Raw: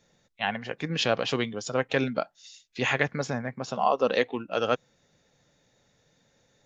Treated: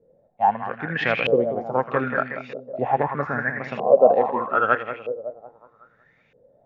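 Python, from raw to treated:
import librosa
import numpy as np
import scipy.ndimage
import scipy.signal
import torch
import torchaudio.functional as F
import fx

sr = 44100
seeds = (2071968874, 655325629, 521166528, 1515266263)

y = fx.echo_split(x, sr, split_hz=1900.0, low_ms=185, high_ms=81, feedback_pct=52, wet_db=-8.0)
y = fx.filter_lfo_lowpass(y, sr, shape='saw_up', hz=0.79, low_hz=450.0, high_hz=2600.0, q=7.7)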